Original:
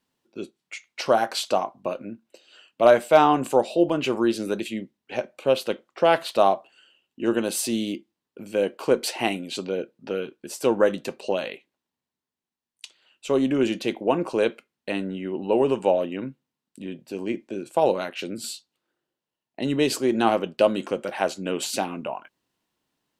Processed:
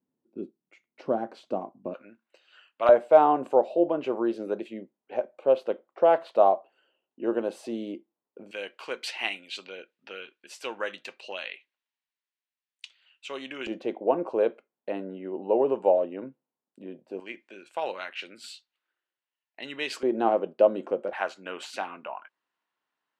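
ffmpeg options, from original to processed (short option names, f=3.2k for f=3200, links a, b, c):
-af "asetnsamples=n=441:p=0,asendcmd='1.94 bandpass f 1500;2.89 bandpass f 600;8.51 bandpass f 2400;13.67 bandpass f 600;17.2 bandpass f 2000;20.03 bandpass f 550;21.13 bandpass f 1400',bandpass=f=260:t=q:w=1.2:csg=0"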